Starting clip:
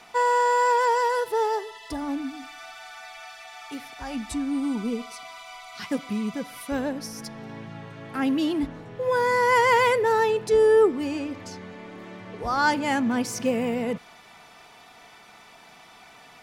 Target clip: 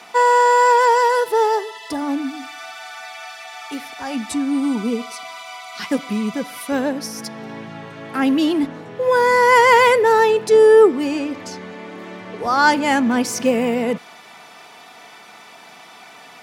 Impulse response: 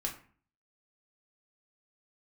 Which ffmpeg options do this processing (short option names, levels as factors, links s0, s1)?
-af "highpass=180,volume=2.37"